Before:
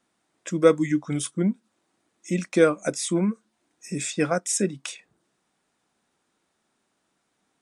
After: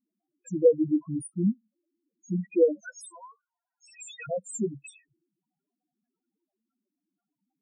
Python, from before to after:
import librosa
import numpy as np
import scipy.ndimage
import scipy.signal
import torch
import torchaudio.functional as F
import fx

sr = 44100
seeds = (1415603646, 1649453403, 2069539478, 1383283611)

y = fx.highpass(x, sr, hz=750.0, slope=24, at=(2.8, 4.28))
y = fx.spec_topn(y, sr, count=2)